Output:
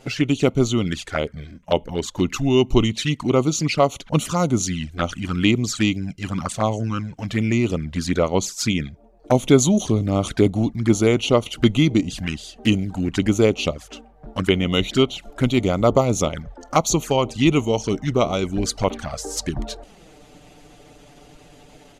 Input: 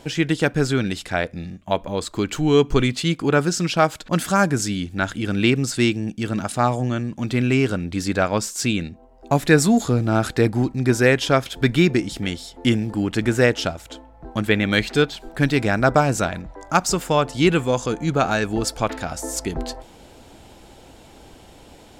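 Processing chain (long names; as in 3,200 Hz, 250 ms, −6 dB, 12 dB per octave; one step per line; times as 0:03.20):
pitch shifter −2 semitones
harmonic and percussive parts rebalanced harmonic −5 dB
flanger swept by the level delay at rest 8.2 ms, full sweep at −19.5 dBFS
level +4 dB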